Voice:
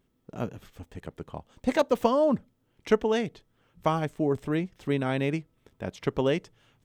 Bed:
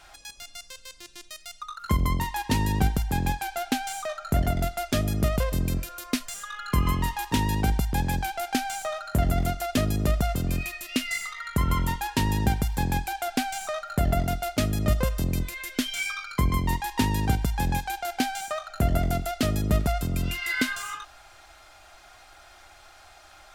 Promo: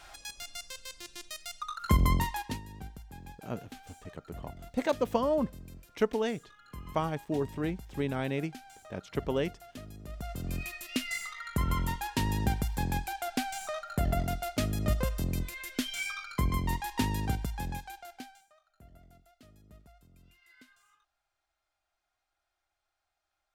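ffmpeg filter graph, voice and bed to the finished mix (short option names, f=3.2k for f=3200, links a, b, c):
-filter_complex "[0:a]adelay=3100,volume=-5dB[a];[1:a]volume=15.5dB,afade=t=out:st=2.16:d=0.45:silence=0.0891251,afade=t=in:st=10.08:d=0.65:silence=0.158489,afade=t=out:st=16.99:d=1.46:silence=0.0421697[b];[a][b]amix=inputs=2:normalize=0"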